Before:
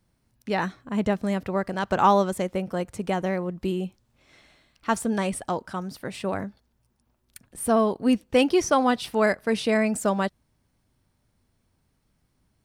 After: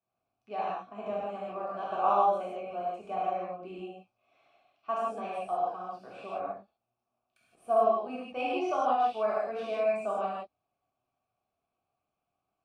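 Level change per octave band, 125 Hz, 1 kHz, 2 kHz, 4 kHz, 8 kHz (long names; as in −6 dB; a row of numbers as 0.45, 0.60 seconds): below −20 dB, −2.5 dB, −13.0 dB, −14.0 dB, below −20 dB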